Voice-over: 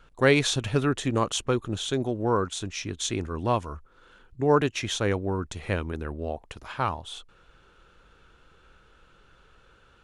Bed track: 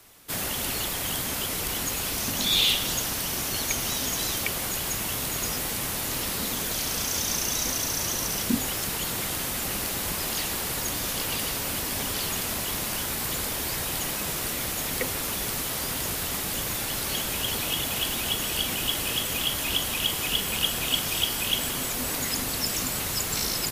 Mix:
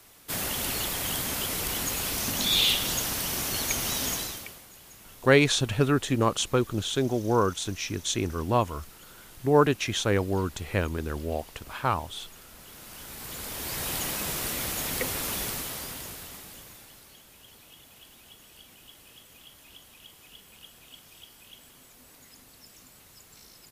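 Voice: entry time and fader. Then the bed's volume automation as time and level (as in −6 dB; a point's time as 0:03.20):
5.05 s, +1.0 dB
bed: 0:04.12 −1 dB
0:04.66 −21 dB
0:12.52 −21 dB
0:13.88 −1.5 dB
0:15.40 −1.5 dB
0:17.18 −24.5 dB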